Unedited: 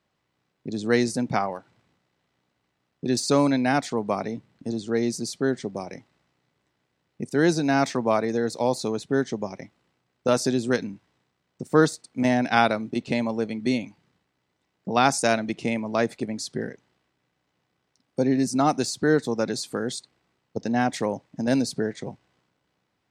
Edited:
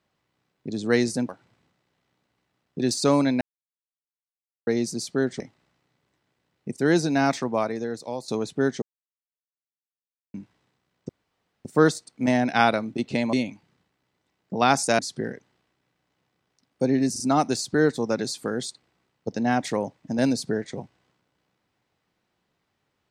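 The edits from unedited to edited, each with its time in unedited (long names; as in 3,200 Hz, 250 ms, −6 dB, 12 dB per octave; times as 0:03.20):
0:01.29–0:01.55: remove
0:03.67–0:04.93: silence
0:05.66–0:05.93: remove
0:07.73–0:08.81: fade out, to −11.5 dB
0:09.35–0:10.87: silence
0:11.62: splice in room tone 0.56 s
0:13.30–0:13.68: remove
0:15.34–0:16.36: remove
0:18.49: stutter 0.04 s, 3 plays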